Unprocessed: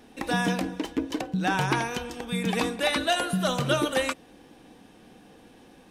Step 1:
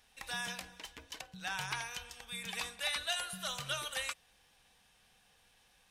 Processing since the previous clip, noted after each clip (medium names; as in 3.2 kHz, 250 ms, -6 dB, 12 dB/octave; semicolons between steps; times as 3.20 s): amplifier tone stack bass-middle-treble 10-0-10; trim -4.5 dB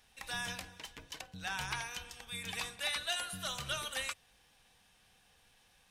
octave divider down 1 oct, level -2 dB; in parallel at -10 dB: saturation -32 dBFS, distortion -14 dB; on the sum: trim -2 dB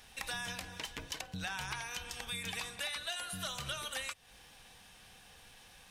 compression 6:1, threshold -47 dBFS, peak gain reduction 14.5 dB; trim +9.5 dB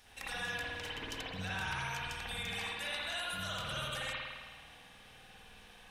spring tank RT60 1.6 s, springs 52 ms, chirp 35 ms, DRR -7.5 dB; trim -5.5 dB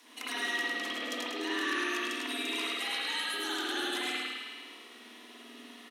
frequency shift +220 Hz; feedback delay 104 ms, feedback 53%, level -4.5 dB; trim +3.5 dB